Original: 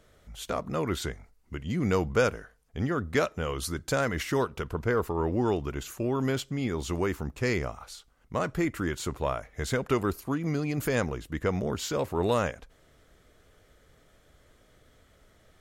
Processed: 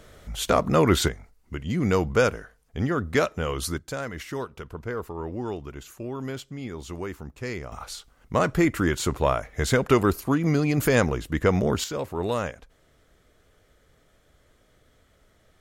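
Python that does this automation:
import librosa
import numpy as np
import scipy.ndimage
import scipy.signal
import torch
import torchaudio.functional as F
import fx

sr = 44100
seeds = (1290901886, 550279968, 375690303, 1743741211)

y = fx.gain(x, sr, db=fx.steps((0.0, 10.5), (1.08, 3.5), (3.78, -5.0), (7.72, 7.0), (11.84, -1.0)))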